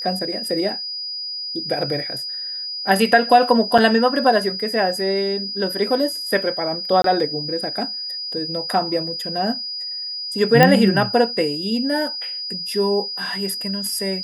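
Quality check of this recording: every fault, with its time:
whine 4.9 kHz -26 dBFS
3.78–3.79 s: dropout 5 ms
7.02–7.04 s: dropout 23 ms
10.63 s: pop 0 dBFS

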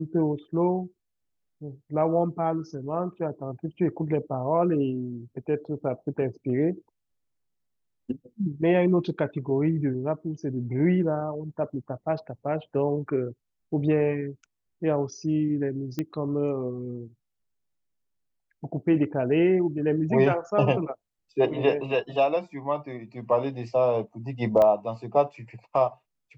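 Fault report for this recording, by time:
15.99 s: pop -16 dBFS
24.62 s: pop -13 dBFS

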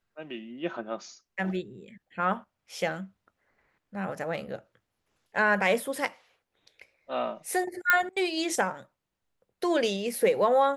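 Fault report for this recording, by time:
7.90 s: pop -7 dBFS

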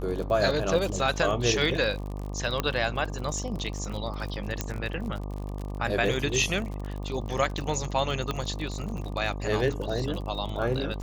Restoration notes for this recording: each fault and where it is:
buzz 50 Hz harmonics 24 -34 dBFS
crackle 39 per s -33 dBFS
2.60 s: pop -12 dBFS
4.61 s: pop -12 dBFS
8.31 s: pop -15 dBFS

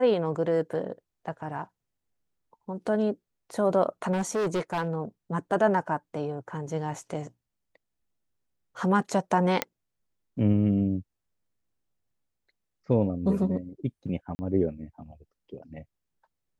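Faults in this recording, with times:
4.12–4.97 s: clipped -24 dBFS
9.62 s: pop -8 dBFS
14.35–14.39 s: dropout 40 ms

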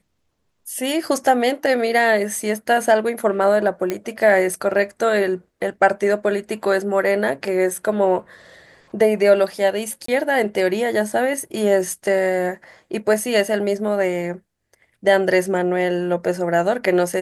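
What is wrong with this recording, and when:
3.90 s: pop -9 dBFS
10.06–10.08 s: dropout 24 ms

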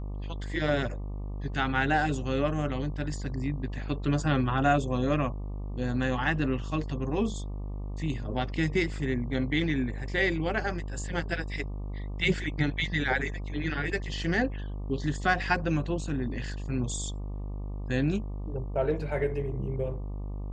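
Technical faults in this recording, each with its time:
buzz 50 Hz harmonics 24 -35 dBFS

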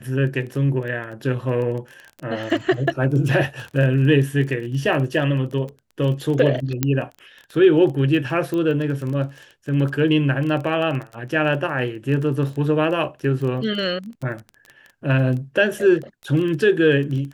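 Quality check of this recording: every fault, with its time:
crackle 16 per s -28 dBFS
6.83 s: pop -4 dBFS
8.54 s: pop -15 dBFS

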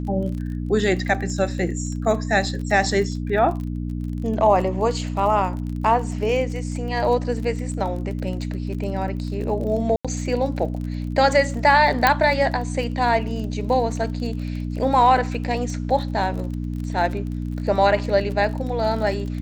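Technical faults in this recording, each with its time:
crackle 33 per s -30 dBFS
hum 60 Hz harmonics 5 -27 dBFS
9.96–10.05 s: dropout 86 ms
12.07 s: pop -2 dBFS

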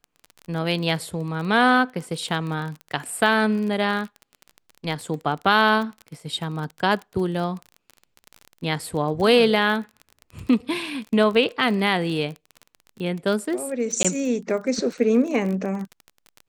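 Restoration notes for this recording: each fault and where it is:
crackle 27 per s -29 dBFS
14.03–14.05 s: dropout 16 ms

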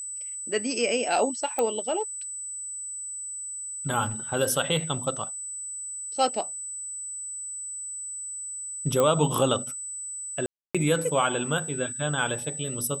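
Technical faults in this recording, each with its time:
whine 8 kHz -33 dBFS
1.59 s: pop -13 dBFS
9.00 s: pop -11 dBFS
10.46–10.75 s: dropout 286 ms

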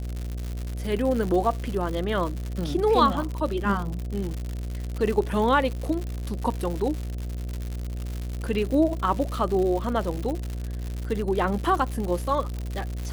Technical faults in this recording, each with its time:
buzz 60 Hz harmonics 12 -31 dBFS
crackle 150 per s -29 dBFS

